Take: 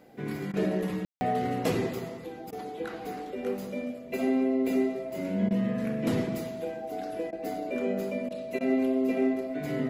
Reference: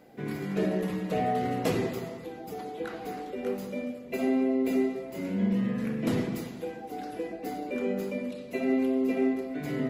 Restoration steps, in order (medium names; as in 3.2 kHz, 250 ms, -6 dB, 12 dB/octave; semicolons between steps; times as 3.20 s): band-stop 650 Hz, Q 30; room tone fill 1.05–1.21 s; interpolate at 0.52/2.51/5.49/7.31/8.29/8.59 s, 15 ms